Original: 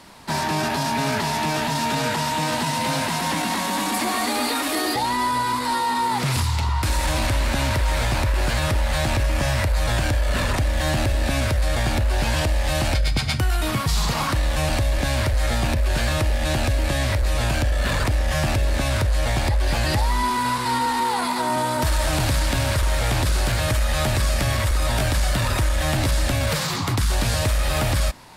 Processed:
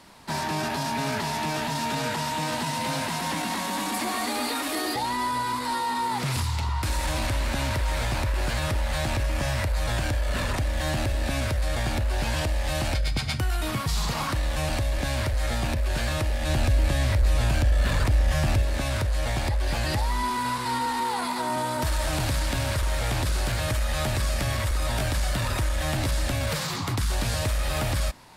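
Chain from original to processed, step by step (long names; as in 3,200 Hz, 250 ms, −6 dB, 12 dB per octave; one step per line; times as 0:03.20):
0:16.47–0:18.62: low-shelf EQ 140 Hz +6.5 dB
level −5 dB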